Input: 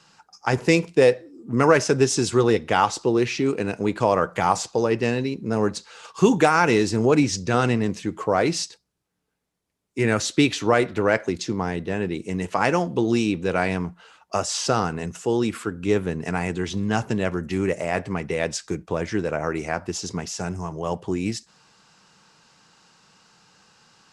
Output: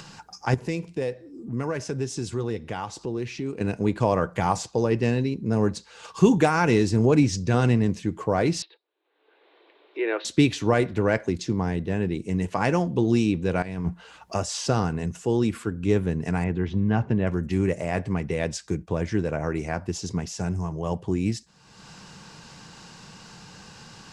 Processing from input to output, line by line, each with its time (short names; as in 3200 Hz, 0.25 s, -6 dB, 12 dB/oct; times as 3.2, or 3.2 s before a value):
0.54–3.61 compressor 1.5:1, threshold -40 dBFS
8.62–10.25 Chebyshev band-pass 330–3900 Hz, order 5
13.62–14.35 negative-ratio compressor -29 dBFS, ratio -0.5
16.44–17.27 LPF 2400 Hz
whole clip: low shelf 210 Hz +11.5 dB; notch 1300 Hz, Q 13; upward compressor, threshold -28 dBFS; gain -4.5 dB